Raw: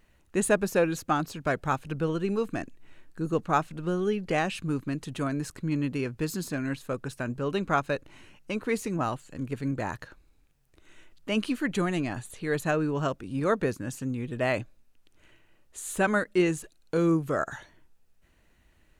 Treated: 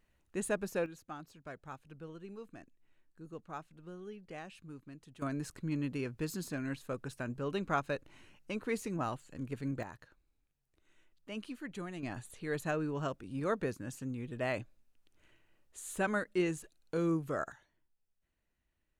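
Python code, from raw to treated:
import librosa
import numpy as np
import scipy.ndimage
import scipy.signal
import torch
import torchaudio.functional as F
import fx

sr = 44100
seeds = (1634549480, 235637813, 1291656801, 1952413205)

y = fx.gain(x, sr, db=fx.steps((0.0, -10.5), (0.86, -19.5), (5.22, -7.0), (9.83, -15.0), (12.03, -8.0), (17.52, -19.5)))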